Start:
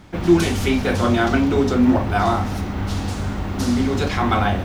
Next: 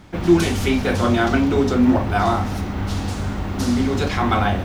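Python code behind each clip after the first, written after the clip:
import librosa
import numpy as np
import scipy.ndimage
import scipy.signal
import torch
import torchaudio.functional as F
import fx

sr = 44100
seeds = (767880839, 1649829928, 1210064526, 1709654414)

y = x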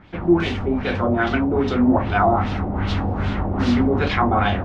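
y = fx.filter_lfo_lowpass(x, sr, shape='sine', hz=2.5, low_hz=630.0, high_hz=3600.0, q=1.8)
y = fx.rider(y, sr, range_db=10, speed_s=2.0)
y = F.gain(torch.from_numpy(y), -2.0).numpy()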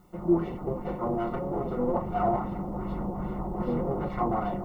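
y = fx.lower_of_two(x, sr, delay_ms=5.6)
y = fx.dmg_noise_colour(y, sr, seeds[0], colour='violet', level_db=-34.0)
y = scipy.signal.savgol_filter(y, 65, 4, mode='constant')
y = F.gain(torch.from_numpy(y), -7.0).numpy()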